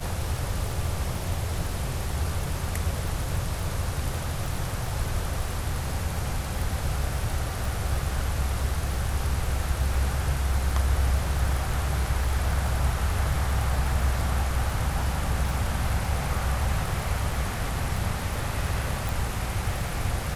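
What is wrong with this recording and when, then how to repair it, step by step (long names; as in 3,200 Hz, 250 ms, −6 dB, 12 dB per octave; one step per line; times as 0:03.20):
surface crackle 30 per second −29 dBFS
0:19.09: click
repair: click removal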